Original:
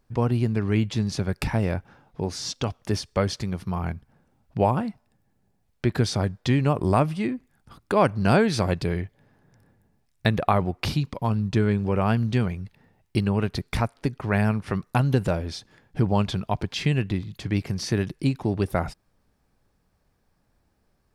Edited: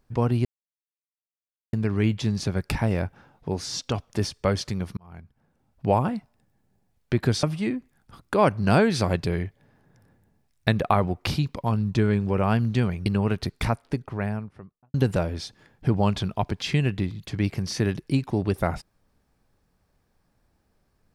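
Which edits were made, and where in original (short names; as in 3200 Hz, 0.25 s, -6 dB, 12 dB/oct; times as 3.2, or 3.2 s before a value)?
0.45 insert silence 1.28 s
3.69–4.66 fade in
6.15–7.01 cut
12.64–13.18 cut
13.74–15.06 studio fade out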